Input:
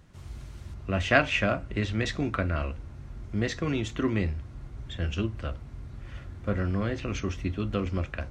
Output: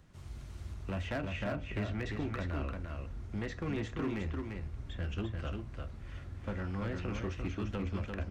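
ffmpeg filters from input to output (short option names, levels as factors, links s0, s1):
-filter_complex "[0:a]acrossover=split=510|2300[s0][s1][s2];[s0]acompressor=threshold=0.0398:ratio=4[s3];[s1]acompressor=threshold=0.0141:ratio=4[s4];[s2]acompressor=threshold=0.00282:ratio=4[s5];[s3][s4][s5]amix=inputs=3:normalize=0,asoftclip=type=hard:threshold=0.0501,aecho=1:1:346:0.596,volume=0.596"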